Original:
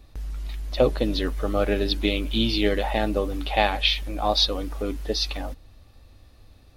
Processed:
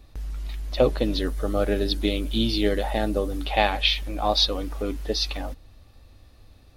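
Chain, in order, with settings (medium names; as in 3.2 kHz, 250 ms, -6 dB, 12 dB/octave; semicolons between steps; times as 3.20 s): 1.18–3.45 s: fifteen-band graphic EQ 1 kHz -4 dB, 2.5 kHz -6 dB, 10 kHz +4 dB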